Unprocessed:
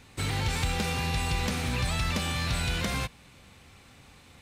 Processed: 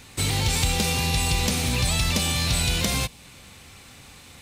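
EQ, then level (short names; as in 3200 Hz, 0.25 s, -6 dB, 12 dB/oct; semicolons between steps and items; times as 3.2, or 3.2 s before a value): high shelf 3700 Hz +8.5 dB; dynamic EQ 1500 Hz, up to -7 dB, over -49 dBFS, Q 1.4; +5.0 dB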